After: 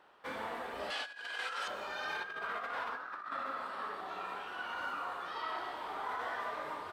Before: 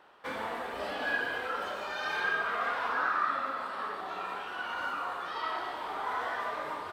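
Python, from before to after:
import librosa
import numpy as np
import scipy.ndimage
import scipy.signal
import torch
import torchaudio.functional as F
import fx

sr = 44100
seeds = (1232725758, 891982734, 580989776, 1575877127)

y = fx.weighting(x, sr, curve='ITU-R 468', at=(0.9, 1.68))
y = fx.over_compress(y, sr, threshold_db=-33.0, ratio=-0.5)
y = y * 10.0 ** (-5.5 / 20.0)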